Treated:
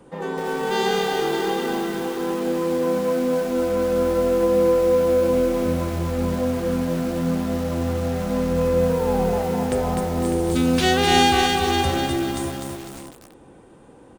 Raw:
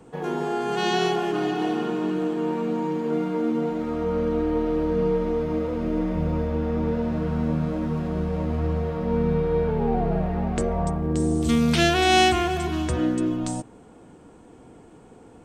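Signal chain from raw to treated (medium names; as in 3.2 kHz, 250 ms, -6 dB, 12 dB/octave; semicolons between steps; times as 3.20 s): speed mistake 44.1 kHz file played as 48 kHz; multi-tap echo 43/435/601 ms -16.5/-20/-11 dB; bit-crushed delay 251 ms, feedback 55%, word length 6-bit, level -3 dB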